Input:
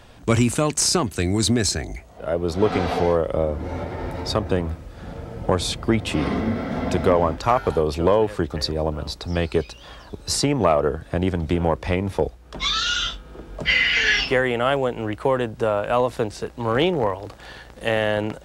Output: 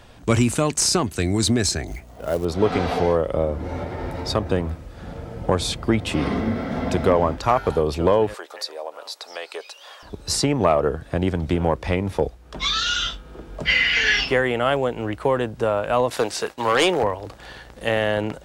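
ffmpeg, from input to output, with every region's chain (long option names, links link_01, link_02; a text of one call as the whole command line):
ffmpeg -i in.wav -filter_complex "[0:a]asettb=1/sr,asplit=3[link_01][link_02][link_03];[link_01]atrim=end=1.874[link_04];[link_02]atrim=start=1.87:end=2.45,asetpts=PTS-STARTPTS,afade=type=in:duration=0.004:curve=qsin,afade=type=out:start_time=0.576:duration=0.004:curve=qsin,aeval=exprs='val(0)+0.00562*(sin(2*PI*60*n/s)+sin(2*PI*2*60*n/s)/2+sin(2*PI*3*60*n/s)/3+sin(2*PI*4*60*n/s)/4+sin(2*PI*5*60*n/s)/5)':channel_layout=same,acrusher=bits=5:mode=log:mix=0:aa=0.000001[link_05];[link_03]atrim=start=2.446[link_06];[link_04][link_05]acrossfade=duration=0.004:curve1=hsin:curve2=qsin[link_07];[link_07][link_06]acrossfade=duration=0.004:curve1=qsin:curve2=hsin,asettb=1/sr,asplit=3[link_08][link_09][link_10];[link_08]atrim=end=8.344[link_11];[link_09]atrim=start=8.34:end=10.03,asetpts=PTS-STARTPTS,afade=type=in:duration=0.004:curve=qsin,afade=type=out:start_time=1.686:duration=0.004:curve=qsin,highpass=frequency=530:width=0.5412,highpass=frequency=530:width=1.3066,acompressor=threshold=-35dB:ratio=1.5:attack=3.2:release=140:knee=1:detection=peak,highshelf=frequency=7400:gain=5.5[link_12];[link_10]atrim=start=10.026[link_13];[link_11][link_12]acrossfade=duration=0.004:curve1=hsin:curve2=qsin[link_14];[link_14][link_13]acrossfade=duration=0.004:curve1=qsin:curve2=hsin,asettb=1/sr,asplit=3[link_15][link_16][link_17];[link_15]atrim=end=16.104[link_18];[link_16]atrim=start=16.1:end=17.03,asetpts=PTS-STARTPTS,afade=type=in:duration=0.004:curve=qsin,afade=type=out:start_time=0.926:duration=0.004:curve=qsin,highpass=frequency=900:poles=1,aeval=exprs='0.266*sin(PI/2*2*val(0)/0.266)':channel_layout=same,agate=range=-33dB:threshold=-38dB:ratio=3:release=100:detection=peak[link_19];[link_17]atrim=start=17.026[link_20];[link_18][link_19]acrossfade=duration=0.004:curve1=hsin:curve2=qsin[link_21];[link_21][link_20]acrossfade=duration=0.004:curve1=qsin:curve2=hsin" out.wav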